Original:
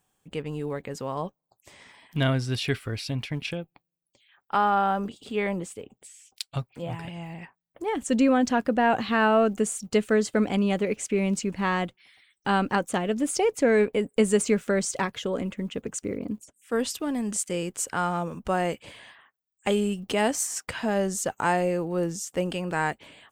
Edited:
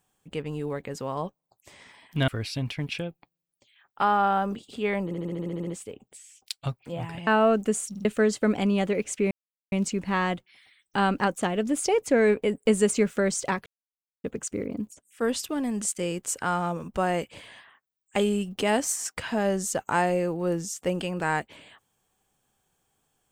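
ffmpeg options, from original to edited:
-filter_complex "[0:a]asplit=18[a][b][c][d][e][f][g][h][i][j][k][l][m][n][o][p][q][r];[a]atrim=end=2.282[s];[b]atrim=start=2.808:end=5.642[t];[c]atrim=start=5.568:end=5.642[u];[d]atrim=start=5.568:end=5.642[v];[e]atrim=start=5.568:end=5.642[w];[f]atrim=start=5.568:end=5.642[x];[g]atrim=start=5.568:end=5.642[y];[h]atrim=start=5.568:end=5.642[z];[i]atrim=start=5.568:end=5.642[aa];[j]atrim=start=5.568:end=5.642[ab];[k]atrim=start=5.568:end=7.172[ac];[l]atrim=start=9.188:end=9.872[ad];[m]atrim=start=9.818:end=9.872[ae];[n]atrim=start=9.818:end=9.872[af];[o]atrim=start=9.968:end=11.23,asetpts=PTS-STARTPTS,afade=t=out:st=1.258:d=0.004:c=hsin,apad=pad_dur=0.41[ag];[p]atrim=start=11.23:end=15.17,asetpts=PTS-STARTPTS,afade=t=in:d=0.004:c=hsin,afade=t=out:st=3.936:d=0.004:c=hsin[ah];[q]atrim=start=15.17:end=15.75,asetpts=PTS-STARTPTS,volume=0[ai];[r]atrim=start=15.75,asetpts=PTS-STARTPTS,afade=t=in:d=0.004:c=hsin[aj];[s][t]acrossfade=d=0.004:c1=hsin:c2=hsin[ak];[ak][u]acrossfade=d=0.004:c1=hsin:c2=hsin[al];[al][v]acrossfade=d=0.004:c1=hsin:c2=hsin[am];[am][w]acrossfade=d=0.004:c1=hsin:c2=hsin[an];[an][x]acrossfade=d=0.004:c1=hsin:c2=hsin[ao];[ao][y]acrossfade=d=0.004:c1=hsin:c2=hsin[ap];[ap][z]acrossfade=d=0.004:c1=hsin:c2=hsin[aq];[aq][aa]acrossfade=d=0.004:c1=hsin:c2=hsin[ar];[ar][ab]acrossfade=d=0.004:c1=hsin:c2=hsin[as];[as][ac]acrossfade=d=0.004:c1=hsin:c2=hsin[at];[at][ad]acrossfade=d=0.004:c1=hsin:c2=hsin[au];[au][ae]acrossfade=d=0.004:c1=hsin:c2=hsin[av];[av][af]acrossfade=d=0.004:c1=hsin:c2=hsin[aw];[ag][ah][ai][aj]concat=n=4:v=0:a=1[ax];[aw][ax]acrossfade=d=0.004:c1=hsin:c2=hsin"

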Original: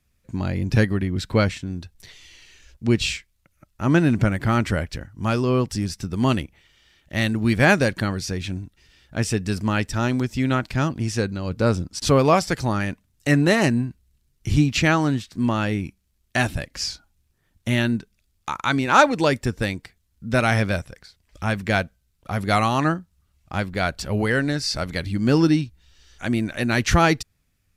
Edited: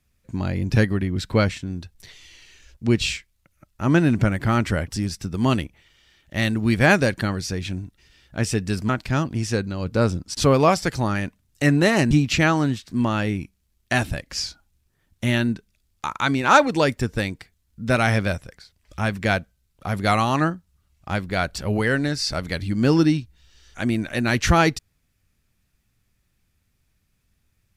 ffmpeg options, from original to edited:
-filter_complex "[0:a]asplit=4[a][b][c][d];[a]atrim=end=4.882[e];[b]atrim=start=5.668:end=9.682[f];[c]atrim=start=10.538:end=13.762[g];[d]atrim=start=14.548[h];[e][f]acrossfade=d=0.004:c1=hsin:c2=hsin[i];[i][g]acrossfade=d=0.004:c1=hsin:c2=hsin[j];[j][h]acrossfade=d=0.004:c1=hsin:c2=hsin"

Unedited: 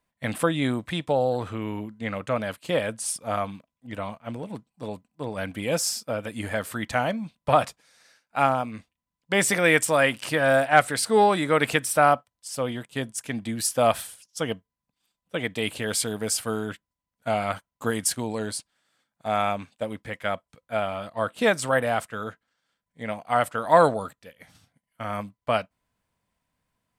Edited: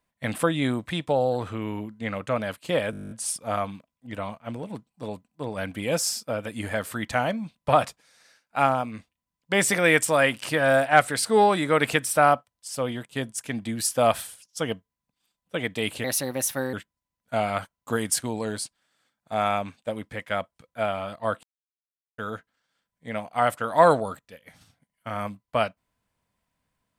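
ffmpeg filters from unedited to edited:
-filter_complex "[0:a]asplit=15[a][b][c][d][e][f][g][h][i][j][k][l][m][n][o];[a]atrim=end=2.932[p];[b]atrim=start=2.908:end=2.932[q];[c]atrim=start=2.908:end=2.932[r];[d]atrim=start=2.908:end=2.932[s];[e]atrim=start=2.908:end=2.932[t];[f]atrim=start=2.908:end=2.932[u];[g]atrim=start=2.908:end=2.932[v];[h]atrim=start=2.908:end=2.932[w];[i]atrim=start=2.908:end=2.932[x];[j]atrim=start=2.908:end=2.932[y];[k]atrim=start=2.908:end=15.844[z];[l]atrim=start=15.84:end=16.67,asetpts=PTS-STARTPTS,asetrate=52920,aresample=44100,atrim=end_sample=30502,asetpts=PTS-STARTPTS[aa];[m]atrim=start=16.666:end=21.37,asetpts=PTS-STARTPTS,afade=t=out:st=4.7:d=0.004:c=hsin[ab];[n]atrim=start=21.37:end=22.12,asetpts=PTS-STARTPTS,volume=0[ac];[o]atrim=start=22.12,asetpts=PTS-STARTPTS,afade=t=in:d=0.004:c=hsin[ad];[p][q]acrossfade=d=0.004:c1=hsin:c2=hsin[ae];[ae][r]acrossfade=d=0.004:c1=hsin:c2=hsin[af];[af][s]acrossfade=d=0.004:c1=hsin:c2=hsin[ag];[ag][t]acrossfade=d=0.004:c1=hsin:c2=hsin[ah];[ah][u]acrossfade=d=0.004:c1=hsin:c2=hsin[ai];[ai][v]acrossfade=d=0.004:c1=hsin:c2=hsin[aj];[aj][w]acrossfade=d=0.004:c1=hsin:c2=hsin[ak];[ak][x]acrossfade=d=0.004:c1=hsin:c2=hsin[al];[al][y]acrossfade=d=0.004:c1=hsin:c2=hsin[am];[am][z]acrossfade=d=0.004:c1=hsin:c2=hsin[an];[an][aa]acrossfade=d=0.004:c1=hsin:c2=hsin[ao];[ab][ac][ad]concat=n=3:v=0:a=1[ap];[ao][ap]acrossfade=d=0.004:c1=hsin:c2=hsin"

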